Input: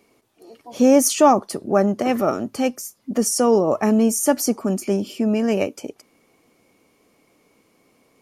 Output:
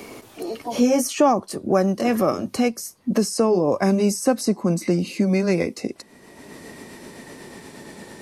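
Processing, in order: pitch bend over the whole clip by -3.5 st starting unshifted; three bands compressed up and down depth 70%

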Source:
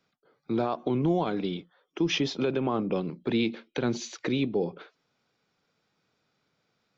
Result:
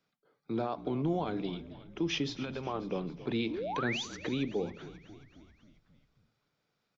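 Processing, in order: 2.21–2.91 s: peaking EQ 780 Hz -> 130 Hz -14 dB 0.61 oct; 3.50–4.03 s: painted sound rise 270–3800 Hz -30 dBFS; frequency-shifting echo 269 ms, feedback 61%, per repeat -48 Hz, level -16 dB; reverberation RT60 0.65 s, pre-delay 7 ms, DRR 16.5 dB; trim -6 dB

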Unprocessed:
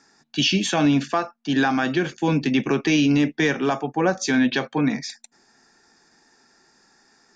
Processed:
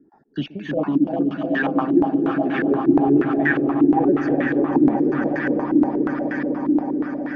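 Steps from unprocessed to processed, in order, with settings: random holes in the spectrogram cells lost 29%; square tremolo 1.3 Hz, depth 65%, duty 60%; in parallel at +2 dB: compression, threshold -32 dBFS, peak gain reduction 15 dB; on the sum: bucket-brigade echo 310 ms, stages 1024, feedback 65%, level -3.5 dB; gain riding within 4 dB 2 s; 0.77–2.72 s: Bessel high-pass 180 Hz, order 2; on a send: echo with a slow build-up 125 ms, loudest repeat 8, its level -10 dB; on the sum: step-sequenced low-pass 8.4 Hz 320–1700 Hz; trim -6 dB

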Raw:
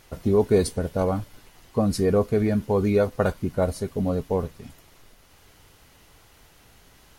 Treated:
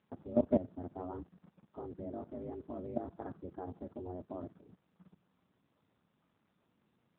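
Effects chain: low-pass 1.4 kHz 24 dB/octave; level held to a coarse grid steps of 17 dB; ring modulator 180 Hz; trim -3.5 dB; AMR-NB 7.4 kbps 8 kHz

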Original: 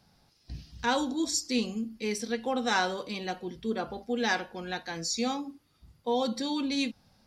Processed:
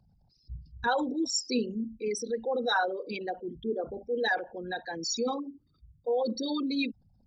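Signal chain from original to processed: resonances exaggerated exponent 3

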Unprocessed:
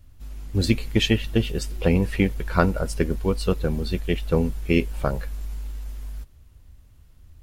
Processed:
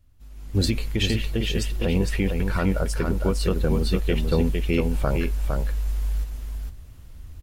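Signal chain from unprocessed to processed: peak limiter -14.5 dBFS, peak gain reduction 11.5 dB; delay 458 ms -5 dB; level rider gain up to 16 dB; trim -9 dB

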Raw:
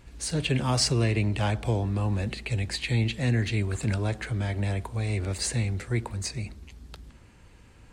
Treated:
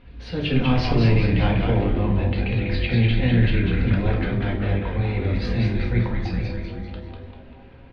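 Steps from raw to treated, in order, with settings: inverse Chebyshev low-pass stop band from 7.1 kHz, stop band 40 dB; frequency-shifting echo 196 ms, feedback 54%, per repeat -150 Hz, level -3.5 dB; reverberation RT60 0.65 s, pre-delay 4 ms, DRR 0 dB

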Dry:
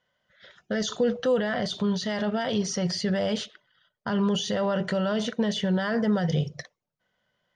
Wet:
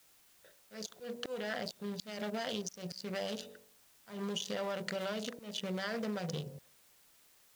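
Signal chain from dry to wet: local Wiener filter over 41 samples; expander -54 dBFS; RIAA curve recording; de-hum 47.84 Hz, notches 21; slow attack 724 ms; compression 12:1, threshold -41 dBFS, peak gain reduction 14.5 dB; word length cut 12-bit, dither triangular; trim +7 dB

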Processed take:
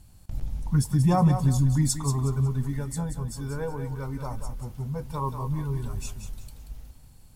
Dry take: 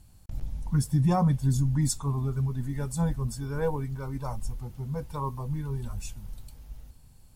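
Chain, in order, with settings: 2.76–5.05 s: compression, threshold -30 dBFS, peak gain reduction 8 dB; thinning echo 183 ms, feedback 33%, high-pass 220 Hz, level -8 dB; trim +2.5 dB

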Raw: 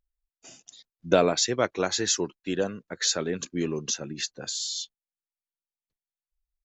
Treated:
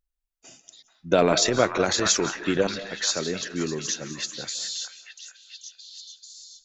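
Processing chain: 1.18–2.67 s: transient shaper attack +7 dB, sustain +11 dB; repeats whose band climbs or falls 437 ms, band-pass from 1.3 kHz, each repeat 0.7 oct, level -3.5 dB; on a send at -14 dB: reverberation RT60 0.40 s, pre-delay 135 ms

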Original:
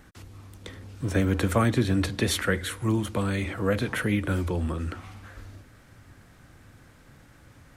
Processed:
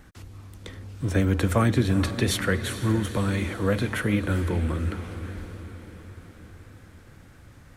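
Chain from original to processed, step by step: bass shelf 120 Hz +4.5 dB; on a send: echo that smears into a reverb 451 ms, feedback 59%, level -12 dB

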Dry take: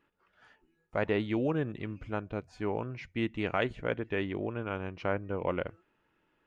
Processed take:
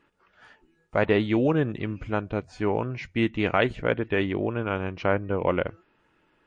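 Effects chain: trim +8 dB; MP3 40 kbps 22.05 kHz

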